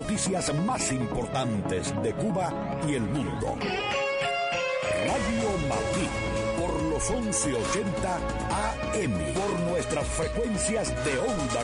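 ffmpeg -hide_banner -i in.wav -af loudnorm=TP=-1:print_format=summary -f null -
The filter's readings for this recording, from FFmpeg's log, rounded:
Input Integrated:    -27.9 LUFS
Input True Peak:     -14.5 dBTP
Input LRA:             0.7 LU
Input Threshold:     -37.9 LUFS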